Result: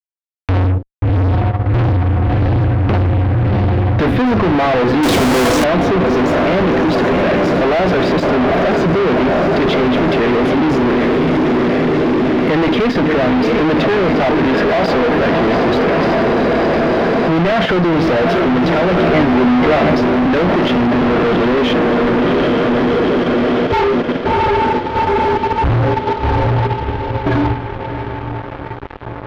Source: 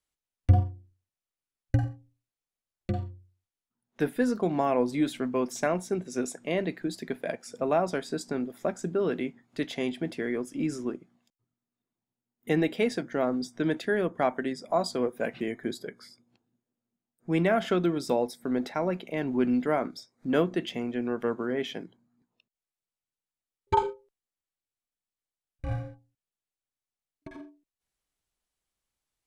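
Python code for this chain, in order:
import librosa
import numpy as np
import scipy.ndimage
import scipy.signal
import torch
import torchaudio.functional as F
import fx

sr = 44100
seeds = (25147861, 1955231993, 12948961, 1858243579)

p1 = x + fx.echo_diffused(x, sr, ms=721, feedback_pct=68, wet_db=-10, dry=0)
p2 = fx.fuzz(p1, sr, gain_db=50.0, gate_db=-53.0)
p3 = fx.air_absorb(p2, sr, metres=310.0)
p4 = fx.leveller(p3, sr, passes=5, at=(5.03, 5.64))
p5 = fx.level_steps(p4, sr, step_db=18)
p6 = p4 + (p5 * 10.0 ** (1.0 / 20.0))
p7 = fx.doubler(p6, sr, ms=13.0, db=-5.5, at=(18.96, 19.95))
y = p7 * 10.0 ** (-3.0 / 20.0)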